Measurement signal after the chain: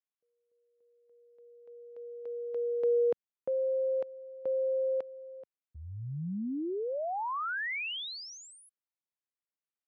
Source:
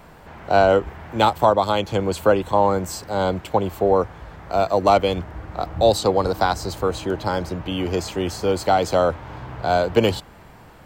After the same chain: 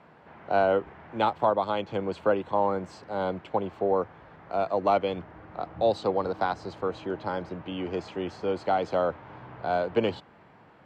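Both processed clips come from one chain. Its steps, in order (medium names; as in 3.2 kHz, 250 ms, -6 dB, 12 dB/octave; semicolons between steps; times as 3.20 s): band-pass 140–2900 Hz; trim -7.5 dB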